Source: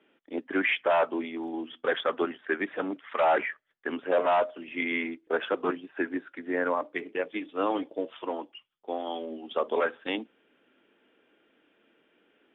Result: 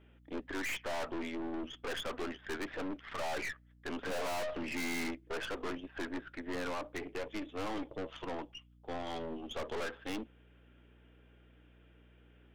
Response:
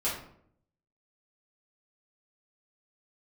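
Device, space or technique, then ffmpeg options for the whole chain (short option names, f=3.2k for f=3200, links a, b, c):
valve amplifier with mains hum: -filter_complex "[0:a]asettb=1/sr,asplit=3[a][b][c];[a]atrim=end=4.034[d];[b]atrim=start=4.03:end=5.11,asetpts=PTS-STARTPTS,afade=t=in:d=0.004:c=qsin,afade=t=out:st=1.076:d=0.004:c=qsin,equalizer=f=125:t=o:w=1:g=9,equalizer=f=250:t=o:w=1:g=7,equalizer=f=500:t=o:w=1:g=7,equalizer=f=1k:t=o:w=1:g=8,equalizer=f=2k:t=o:w=1:g=8[e];[c]atrim=start=5.106[f];[d][e]acrossfade=d=0.004:c1=hsin:c2=qsin[g];[g][f]acrossfade=d=0.004:c1=qsin:c2=hsin,aeval=exprs='(tanh(70.8*val(0)+0.6)-tanh(0.6))/70.8':c=same,aeval=exprs='val(0)+0.000794*(sin(2*PI*60*n/s)+sin(2*PI*2*60*n/s)/2+sin(2*PI*3*60*n/s)/3+sin(2*PI*4*60*n/s)/4+sin(2*PI*5*60*n/s)/5)':c=same,volume=1dB"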